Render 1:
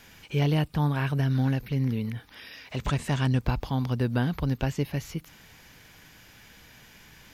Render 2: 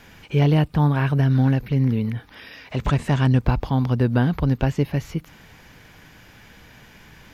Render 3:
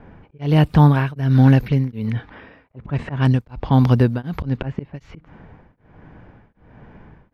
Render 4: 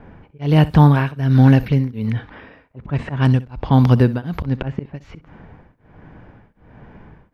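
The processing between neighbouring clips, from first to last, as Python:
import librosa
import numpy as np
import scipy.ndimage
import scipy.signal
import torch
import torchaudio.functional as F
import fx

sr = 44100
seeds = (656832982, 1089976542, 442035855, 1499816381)

y1 = fx.high_shelf(x, sr, hz=3000.0, db=-9.5)
y1 = F.gain(torch.from_numpy(y1), 7.0).numpy()
y2 = fx.auto_swell(y1, sr, attack_ms=207.0)
y2 = fx.env_lowpass(y2, sr, base_hz=800.0, full_db=-17.5)
y2 = y2 * np.abs(np.cos(np.pi * 1.3 * np.arange(len(y2)) / sr))
y2 = F.gain(torch.from_numpy(y2), 7.0).numpy()
y3 = fx.room_flutter(y2, sr, wall_m=10.9, rt60_s=0.21)
y3 = F.gain(torch.from_numpy(y3), 1.5).numpy()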